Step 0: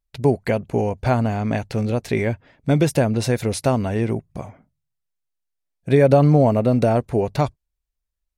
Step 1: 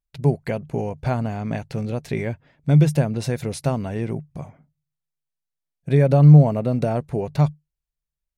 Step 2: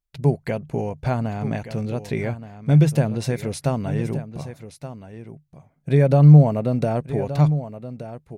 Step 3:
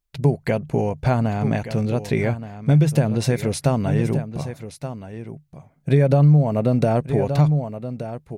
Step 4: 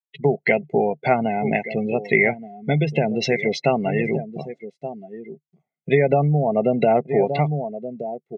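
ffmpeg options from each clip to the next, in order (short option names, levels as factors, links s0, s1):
-af "equalizer=f=150:w=6:g=13.5,volume=0.531"
-af "aecho=1:1:1174:0.237"
-af "acompressor=threshold=0.141:ratio=4,volume=1.68"
-af "highpass=f=210:w=0.5412,highpass=f=210:w=1.3066,equalizer=f=250:t=q:w=4:g=-3,equalizer=f=380:t=q:w=4:g=8,equalizer=f=560:t=q:w=4:g=-8,equalizer=f=1300:t=q:w=4:g=-6,equalizer=f=2100:t=q:w=4:g=9,equalizer=f=3100:t=q:w=4:g=7,lowpass=f=7100:w=0.5412,lowpass=f=7100:w=1.3066,afftdn=nr=31:nf=-30,aecho=1:1:1.5:0.65,volume=1.58"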